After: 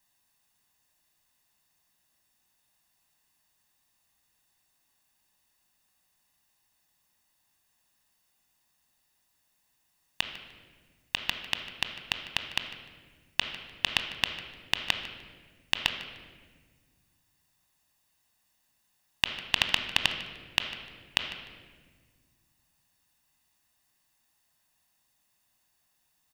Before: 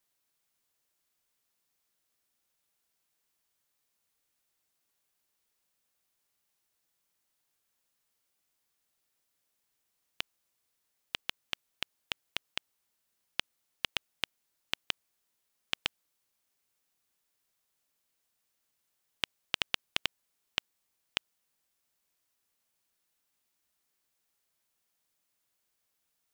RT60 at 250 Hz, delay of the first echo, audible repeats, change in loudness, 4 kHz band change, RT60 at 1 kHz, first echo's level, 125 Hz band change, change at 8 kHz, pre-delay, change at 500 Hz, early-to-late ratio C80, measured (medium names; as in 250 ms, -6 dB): 2.5 s, 151 ms, 1, +7.0 dB, +6.5 dB, 1.3 s, -17.5 dB, +10.5 dB, +6.0 dB, 21 ms, +5.0 dB, 9.0 dB